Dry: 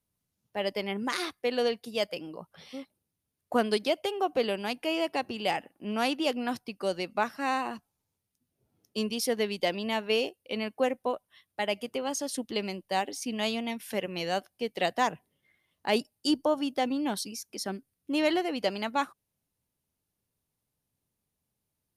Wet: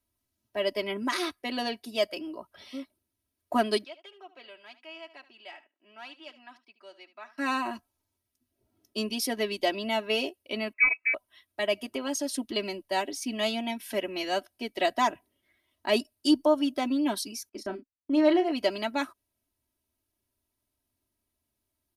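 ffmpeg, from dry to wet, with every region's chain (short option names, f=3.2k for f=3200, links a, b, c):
-filter_complex "[0:a]asettb=1/sr,asplit=3[a][b][c];[a]atrim=end=3.844[d];[b]atrim=start=3.84:end=7.38,asetpts=PTS-STARTPTS,afade=t=in:d=0.004:c=qsin,afade=t=out:st=3.536:d=0.004:c=qsin,lowpass=2k,aderivative,aecho=1:1:74:0.168,atrim=end_sample=156114[e];[c]atrim=start=7.376[f];[d][e]acrossfade=d=0.004:c1=hsin:c2=qsin[g];[g][f]acrossfade=d=0.004:c1=qsin:c2=hsin,asettb=1/sr,asplit=3[h][i][j];[h]atrim=end=10.734[k];[i]atrim=start=10.73:end=11.14,asetpts=PTS-STARTPTS,afade=t=in:d=0.004:c=qsin,afade=t=out:st=0.406:d=0.004:c=qsin,bandreject=f=1.9k:w=11,lowpass=f=2.4k:t=q:w=0.5098,lowpass=f=2.4k:t=q:w=0.6013,lowpass=f=2.4k:t=q:w=0.9,lowpass=f=2.4k:t=q:w=2.563,afreqshift=-2800[l];[j]atrim=start=11.136[m];[k][l]acrossfade=d=0.004:c1=hsin:c2=qsin[n];[n][m]acrossfade=d=0.004:c1=qsin:c2=hsin,asettb=1/sr,asplit=3[o][p][q];[o]atrim=end=17.494[r];[p]atrim=start=17.49:end=18.52,asetpts=PTS-STARTPTS,afade=t=in:d=0.004:c=qsin,afade=t=out:st=1.026:d=0.004:c=qsin,lowpass=f=2.1k:p=1,agate=range=-24dB:threshold=-44dB:ratio=16:release=100:detection=peak,asplit=2[s][t];[t]adelay=33,volume=-9.5dB[u];[s][u]amix=inputs=2:normalize=0,atrim=end_sample=45423[v];[q]atrim=start=18.516[w];[r][v]acrossfade=d=0.004:c1=hsin:c2=qsin[x];[x][w]acrossfade=d=0.004:c1=qsin:c2=hsin,equalizer=f=7.4k:t=o:w=0.4:g=-2.5,aecho=1:1:3.1:0.92,volume=-1dB"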